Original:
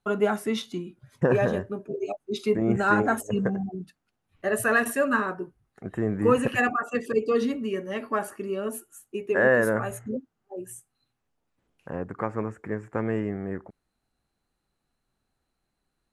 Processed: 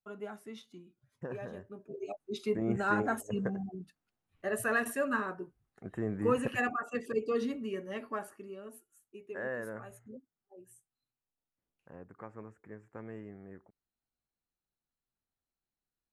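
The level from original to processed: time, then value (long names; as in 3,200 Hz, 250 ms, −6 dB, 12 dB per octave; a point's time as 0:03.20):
0:01.47 −19 dB
0:02.15 −8 dB
0:07.98 −8 dB
0:08.69 −17.5 dB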